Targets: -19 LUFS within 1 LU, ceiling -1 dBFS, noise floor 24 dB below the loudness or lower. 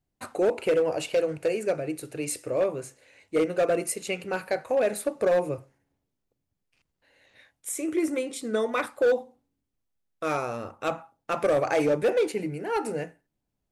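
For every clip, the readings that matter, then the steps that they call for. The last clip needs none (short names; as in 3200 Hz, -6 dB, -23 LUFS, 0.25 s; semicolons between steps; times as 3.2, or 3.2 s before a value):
clipped 1.3%; flat tops at -17.5 dBFS; loudness -27.5 LUFS; peak -17.5 dBFS; loudness target -19.0 LUFS
-> clip repair -17.5 dBFS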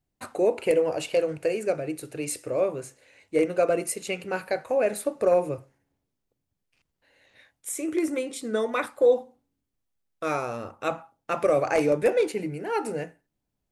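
clipped 0.0%; loudness -26.5 LUFS; peak -9.5 dBFS; loudness target -19.0 LUFS
-> gain +7.5 dB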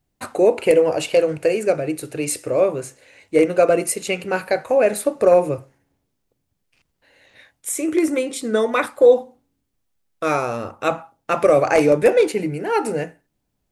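loudness -19.0 LUFS; peak -2.0 dBFS; noise floor -74 dBFS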